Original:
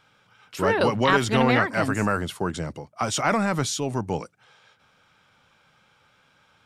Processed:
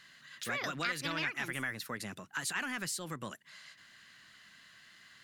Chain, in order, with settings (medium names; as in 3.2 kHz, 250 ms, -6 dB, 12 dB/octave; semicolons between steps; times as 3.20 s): FFT filter 170 Hz 0 dB, 620 Hz -5 dB, 1.2 kHz +8 dB; compression 2:1, threshold -41 dBFS, peak gain reduction 17.5 dB; tape speed +27%; trim -4 dB